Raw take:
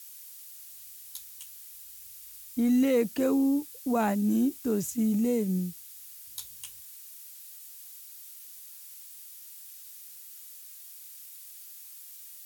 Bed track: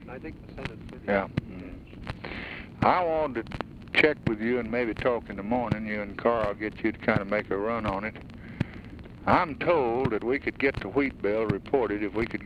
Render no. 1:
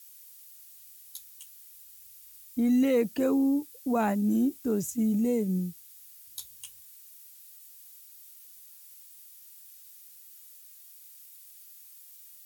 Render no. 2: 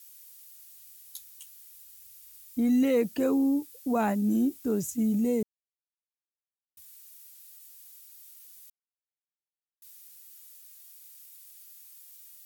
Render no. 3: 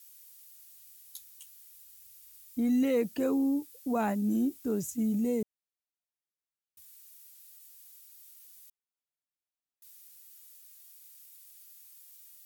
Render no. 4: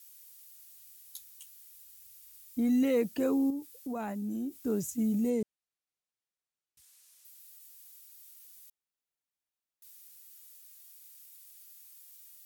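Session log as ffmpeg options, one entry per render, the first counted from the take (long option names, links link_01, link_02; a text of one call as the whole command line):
ffmpeg -i in.wav -af "afftdn=noise_reduction=6:noise_floor=-47" out.wav
ffmpeg -i in.wav -filter_complex "[0:a]asplit=5[link_01][link_02][link_03][link_04][link_05];[link_01]atrim=end=5.43,asetpts=PTS-STARTPTS,afade=type=out:start_time=5.426:duration=0.004:curve=hsin[link_06];[link_02]atrim=start=5.43:end=6.77,asetpts=PTS-STARTPTS,volume=0[link_07];[link_03]atrim=start=6.77:end=8.7,asetpts=PTS-STARTPTS,afade=type=in:duration=0.004:curve=hsin,afade=type=out:start_time=1.926:duration=0.004:curve=hsin[link_08];[link_04]atrim=start=8.7:end=9.82,asetpts=PTS-STARTPTS,volume=0[link_09];[link_05]atrim=start=9.82,asetpts=PTS-STARTPTS,afade=type=in:duration=0.004:curve=hsin[link_10];[link_06][link_07][link_08][link_09][link_10]concat=n=5:v=0:a=1" out.wav
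ffmpeg -i in.wav -af "volume=-3dB" out.wav
ffmpeg -i in.wav -filter_complex "[0:a]asettb=1/sr,asplit=3[link_01][link_02][link_03];[link_01]atrim=end=1.344[link_04];[link_02]atrim=start=1.34:end=1.79,asetpts=PTS-STARTPTS,afade=type=in:duration=0.004:curve=qsin,afade=type=out:start_time=0.446:duration=0.004:curve=qsin,equalizer=frequency=390:width=1.5:gain=-6.5[link_05];[link_03]atrim=start=1.786[link_06];[link_04][link_05]acrossfade=duration=0.004:curve1=hsin:curve2=qsin[link_07];[link_07][link_06]acrossfade=duration=0.004:curve1=qsin:curve2=hsin,asettb=1/sr,asplit=3[link_08][link_09][link_10];[link_08]atrim=end=3.504[link_11];[link_09]atrim=start=3.5:end=4.55,asetpts=PTS-STARTPTS,afade=type=in:duration=0.004:curve=qsin,afade=type=out:start_time=1.046:duration=0.004:curve=qsin,acompressor=threshold=-38dB:ratio=2:attack=3.2:release=140:knee=1:detection=peak[link_12];[link_10]atrim=start=4.546[link_13];[link_11][link_12]acrossfade=duration=0.004:curve1=hsin:curve2=qsin[link_14];[link_14][link_13]acrossfade=duration=0.004:curve1=qsin:curve2=hsin,asettb=1/sr,asplit=3[link_15][link_16][link_17];[link_15]atrim=end=5.304[link_18];[link_16]atrim=start=5.3:end=7.25,asetpts=PTS-STARTPTS,afade=type=in:duration=0.004:curve=qsin,afade=type=out:start_time=1.946:duration=0.004:curve=qsin,lowpass=10000[link_19];[link_17]atrim=start=7.246[link_20];[link_18][link_19]acrossfade=duration=0.004:curve1=hsin:curve2=qsin[link_21];[link_21][link_20]acrossfade=duration=0.004:curve1=qsin:curve2=hsin" out.wav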